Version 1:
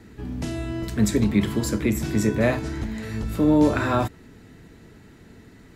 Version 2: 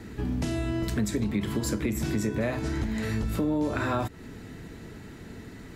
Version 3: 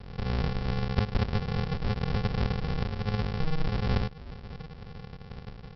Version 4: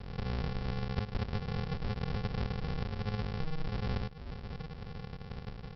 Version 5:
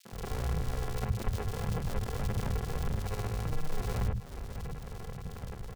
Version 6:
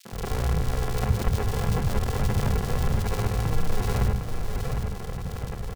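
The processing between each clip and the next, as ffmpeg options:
-filter_complex "[0:a]asplit=2[a][b];[b]alimiter=limit=-17dB:level=0:latency=1:release=101,volume=-2.5dB[c];[a][c]amix=inputs=2:normalize=0,acompressor=threshold=-26dB:ratio=4"
-af "aecho=1:1:7.3:0.54,aresample=11025,acrusher=samples=35:mix=1:aa=0.000001,aresample=44100"
-af "acompressor=threshold=-36dB:ratio=2"
-filter_complex "[0:a]acrusher=samples=24:mix=1:aa=0.000001,acrossover=split=180|2800[a][b][c];[b]adelay=50[d];[a]adelay=120[e];[e][d][c]amix=inputs=3:normalize=0,aphaser=in_gain=1:out_gain=1:delay=3:decay=0.29:speed=1.7:type=triangular,volume=2dB"
-af "aecho=1:1:757:0.473,volume=7.5dB"

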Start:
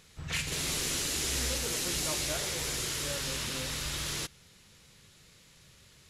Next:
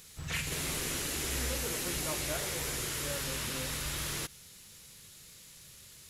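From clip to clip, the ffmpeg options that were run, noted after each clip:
-filter_complex "[0:a]acrossover=split=2600[a][b];[b]acompressor=threshold=-45dB:ratio=4:attack=1:release=60[c];[a][c]amix=inputs=2:normalize=0,aemphasis=mode=production:type=50fm"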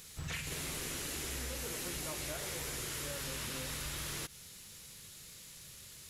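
-af "acompressor=threshold=-38dB:ratio=6,volume=1dB"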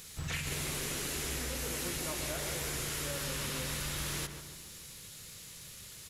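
-filter_complex "[0:a]asplit=2[a][b];[b]adelay=144,lowpass=f=2.2k:p=1,volume=-7.5dB,asplit=2[c][d];[d]adelay=144,lowpass=f=2.2k:p=1,volume=0.53,asplit=2[e][f];[f]adelay=144,lowpass=f=2.2k:p=1,volume=0.53,asplit=2[g][h];[h]adelay=144,lowpass=f=2.2k:p=1,volume=0.53,asplit=2[i][j];[j]adelay=144,lowpass=f=2.2k:p=1,volume=0.53,asplit=2[k][l];[l]adelay=144,lowpass=f=2.2k:p=1,volume=0.53[m];[a][c][e][g][i][k][m]amix=inputs=7:normalize=0,volume=3dB"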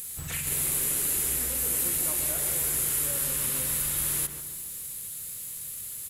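-af "aexciter=amount=8.3:drive=1.4:freq=7.9k"

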